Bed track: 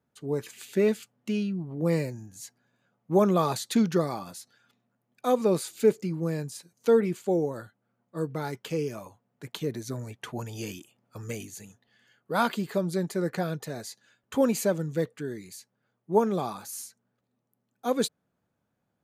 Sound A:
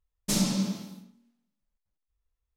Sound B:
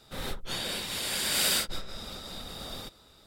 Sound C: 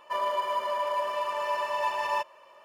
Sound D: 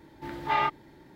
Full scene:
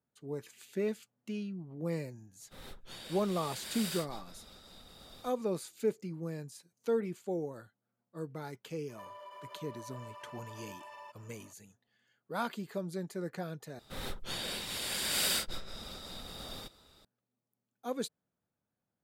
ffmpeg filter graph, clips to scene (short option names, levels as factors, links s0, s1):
-filter_complex "[2:a]asplit=2[s0][s1];[0:a]volume=0.316[s2];[3:a]acompressor=threshold=0.0126:ratio=6:attack=3.2:release=140:knee=1:detection=peak[s3];[s2]asplit=2[s4][s5];[s4]atrim=end=13.794[s6];[s1]atrim=end=3.26,asetpts=PTS-STARTPTS,volume=0.596[s7];[s5]atrim=start=17.046[s8];[s0]atrim=end=3.26,asetpts=PTS-STARTPTS,volume=0.2,afade=t=in:d=0.004:c=hsin,afade=t=out:st=3.256:d=0.004:c=hsin,adelay=2400[s9];[s3]atrim=end=2.64,asetpts=PTS-STARTPTS,volume=0.355,afade=t=in:d=0.004:c=hsin,afade=t=out:st=2.636:d=0.004:c=hsin,adelay=8890[s10];[s6][s7]acrossfade=d=0.004:c1=hsin:c2=hsin[s11];[s11][s8]acrossfade=d=0.004:c1=hsin:c2=hsin[s12];[s12][s9][s10]amix=inputs=3:normalize=0"